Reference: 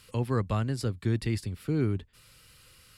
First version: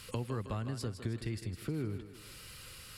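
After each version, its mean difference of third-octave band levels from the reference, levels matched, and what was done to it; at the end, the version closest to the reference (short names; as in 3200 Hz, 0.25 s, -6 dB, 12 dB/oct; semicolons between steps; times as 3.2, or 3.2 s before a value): 8.5 dB: compressor 4:1, threshold -43 dBFS, peak gain reduction 17 dB; on a send: thinning echo 0.158 s, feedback 50%, high-pass 210 Hz, level -9 dB; on the sum: gain +6 dB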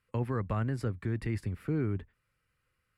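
6.0 dB: limiter -23 dBFS, peak gain reduction 6.5 dB; resonant high shelf 2700 Hz -10.5 dB, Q 1.5; gate -49 dBFS, range -19 dB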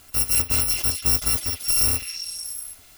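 13.0 dB: FFT order left unsorted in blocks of 256 samples; delay with a stepping band-pass 0.191 s, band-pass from 2700 Hz, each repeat 0.7 oct, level -2 dB; gain +6.5 dB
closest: second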